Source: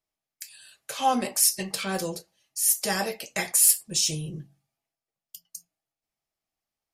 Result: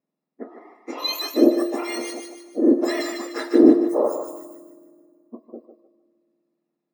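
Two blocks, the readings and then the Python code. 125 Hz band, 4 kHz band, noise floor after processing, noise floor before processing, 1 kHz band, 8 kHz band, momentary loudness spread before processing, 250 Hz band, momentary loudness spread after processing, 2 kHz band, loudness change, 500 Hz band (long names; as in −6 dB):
below −10 dB, −0.5 dB, −82 dBFS, below −85 dBFS, −4.0 dB, −17.5 dB, 24 LU, +16.5 dB, 19 LU, −0.5 dB, +3.0 dB, +13.5 dB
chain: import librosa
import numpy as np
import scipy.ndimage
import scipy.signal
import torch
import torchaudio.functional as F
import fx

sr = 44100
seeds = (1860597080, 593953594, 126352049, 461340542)

y = fx.octave_mirror(x, sr, pivot_hz=1800.0)
y = fx.peak_eq(y, sr, hz=1800.0, db=6.0, octaves=1.8)
y = fx.notch_comb(y, sr, f0_hz=1500.0)
y = fx.echo_thinned(y, sr, ms=151, feedback_pct=41, hz=720.0, wet_db=-4.5)
y = fx.rev_fdn(y, sr, rt60_s=2.1, lf_ratio=1.35, hf_ratio=0.75, size_ms=16.0, drr_db=16.5)
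y = y * 10.0 ** (-1.5 / 20.0)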